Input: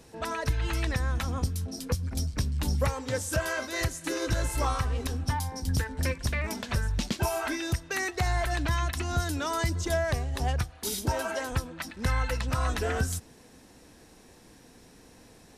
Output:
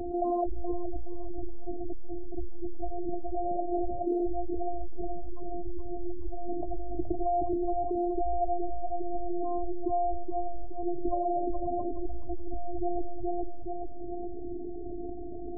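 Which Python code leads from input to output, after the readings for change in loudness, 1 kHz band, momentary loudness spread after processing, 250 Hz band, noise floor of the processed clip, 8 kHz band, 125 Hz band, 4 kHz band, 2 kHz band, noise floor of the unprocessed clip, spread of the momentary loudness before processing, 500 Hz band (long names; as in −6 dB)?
−4.5 dB, +1.0 dB, 10 LU, +2.5 dB, −34 dBFS, below −40 dB, −16.5 dB, below −40 dB, below −40 dB, −55 dBFS, 4 LU, +2.0 dB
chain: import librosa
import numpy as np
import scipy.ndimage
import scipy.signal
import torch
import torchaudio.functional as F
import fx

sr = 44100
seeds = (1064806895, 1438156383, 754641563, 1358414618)

y = scipy.signal.sosfilt(scipy.signal.butter(12, 830.0, 'lowpass', fs=sr, output='sos'), x)
y = fx.hum_notches(y, sr, base_hz=50, count=3)
y = fx.tremolo_random(y, sr, seeds[0], hz=3.5, depth_pct=55)
y = fx.rider(y, sr, range_db=10, speed_s=2.0)
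y = fx.robotise(y, sr, hz=349.0)
y = fx.spec_gate(y, sr, threshold_db=-20, keep='strong')
y = fx.echo_feedback(y, sr, ms=422, feedback_pct=28, wet_db=-5.5)
y = fx.env_flatten(y, sr, amount_pct=70)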